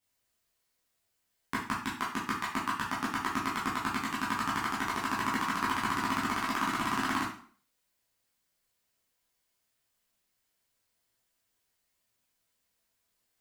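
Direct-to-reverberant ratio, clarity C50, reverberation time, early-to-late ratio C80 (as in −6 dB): −8.0 dB, 4.5 dB, 0.45 s, 9.5 dB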